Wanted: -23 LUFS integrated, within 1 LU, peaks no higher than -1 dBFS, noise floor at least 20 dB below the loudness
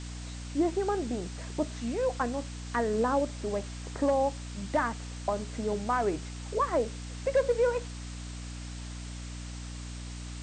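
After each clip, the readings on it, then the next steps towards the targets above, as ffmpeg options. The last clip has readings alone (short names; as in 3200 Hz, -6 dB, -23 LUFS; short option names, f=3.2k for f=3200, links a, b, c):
hum 60 Hz; harmonics up to 300 Hz; hum level -38 dBFS; noise floor -40 dBFS; noise floor target -52 dBFS; loudness -32.0 LUFS; peak -17.0 dBFS; loudness target -23.0 LUFS
-> -af "bandreject=f=60:t=h:w=4,bandreject=f=120:t=h:w=4,bandreject=f=180:t=h:w=4,bandreject=f=240:t=h:w=4,bandreject=f=300:t=h:w=4"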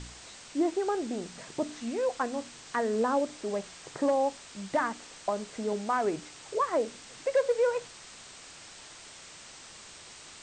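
hum none; noise floor -49 dBFS; noise floor target -51 dBFS
-> -af "afftdn=nr=6:nf=-49"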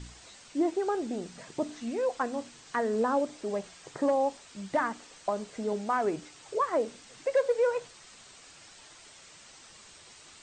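noise floor -53 dBFS; loudness -31.0 LUFS; peak -17.5 dBFS; loudness target -23.0 LUFS
-> -af "volume=8dB"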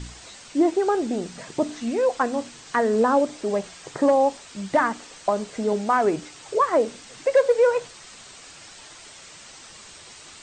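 loudness -23.0 LUFS; peak -9.5 dBFS; noise floor -45 dBFS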